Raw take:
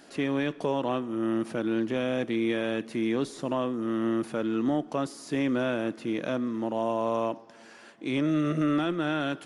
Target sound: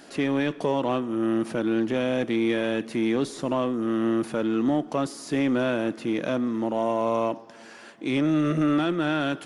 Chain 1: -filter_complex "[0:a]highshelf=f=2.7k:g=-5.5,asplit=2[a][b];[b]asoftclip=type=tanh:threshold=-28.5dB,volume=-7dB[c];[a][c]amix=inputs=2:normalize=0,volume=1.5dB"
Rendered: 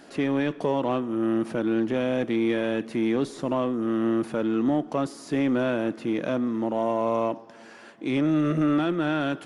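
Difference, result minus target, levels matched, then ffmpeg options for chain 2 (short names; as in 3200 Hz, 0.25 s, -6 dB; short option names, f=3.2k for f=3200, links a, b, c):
4000 Hz band -3.0 dB
-filter_complex "[0:a]asplit=2[a][b];[b]asoftclip=type=tanh:threshold=-28.5dB,volume=-7dB[c];[a][c]amix=inputs=2:normalize=0,volume=1.5dB"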